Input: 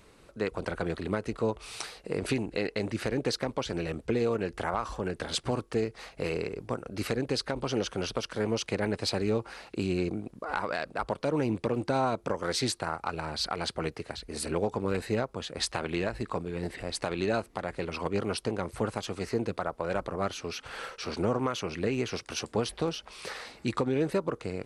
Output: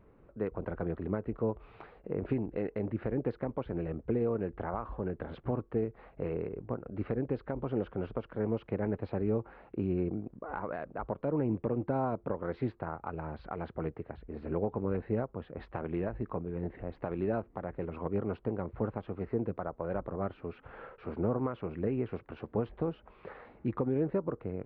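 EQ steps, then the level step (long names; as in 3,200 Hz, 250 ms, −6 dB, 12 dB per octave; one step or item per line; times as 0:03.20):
high-frequency loss of the air 470 metres
head-to-tape spacing loss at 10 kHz 45 dB
0.0 dB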